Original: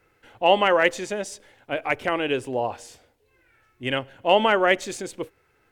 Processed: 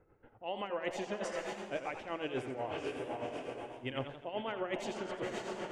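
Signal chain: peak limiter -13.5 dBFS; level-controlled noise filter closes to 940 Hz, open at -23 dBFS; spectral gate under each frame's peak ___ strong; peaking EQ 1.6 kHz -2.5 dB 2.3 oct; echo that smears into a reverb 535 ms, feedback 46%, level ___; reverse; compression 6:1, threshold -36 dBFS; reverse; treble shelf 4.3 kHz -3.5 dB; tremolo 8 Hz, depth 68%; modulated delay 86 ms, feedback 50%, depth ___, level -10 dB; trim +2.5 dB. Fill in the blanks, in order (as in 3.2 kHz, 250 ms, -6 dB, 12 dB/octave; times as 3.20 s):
-50 dB, -9 dB, 115 cents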